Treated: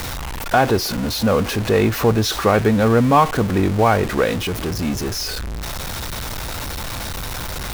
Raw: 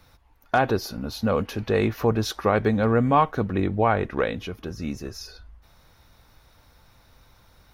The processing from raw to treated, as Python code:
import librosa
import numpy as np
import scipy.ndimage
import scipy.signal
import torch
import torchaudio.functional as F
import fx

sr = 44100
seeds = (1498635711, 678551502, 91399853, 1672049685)

y = x + 0.5 * 10.0 ** (-25.5 / 20.0) * np.sign(x)
y = y * librosa.db_to_amplitude(4.0)